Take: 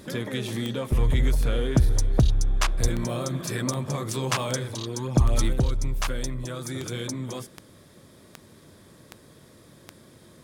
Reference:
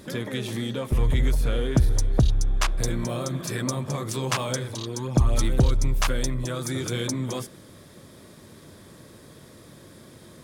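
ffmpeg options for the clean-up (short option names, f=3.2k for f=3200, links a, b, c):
-filter_complex "[0:a]adeclick=t=4,asplit=3[a][b][c];[a]afade=t=out:st=2.81:d=0.02[d];[b]highpass=f=140:w=0.5412,highpass=f=140:w=1.3066,afade=t=in:st=2.81:d=0.02,afade=t=out:st=2.93:d=0.02[e];[c]afade=t=in:st=2.93:d=0.02[f];[d][e][f]amix=inputs=3:normalize=0,asetnsamples=n=441:p=0,asendcmd='5.53 volume volume 4dB',volume=0dB"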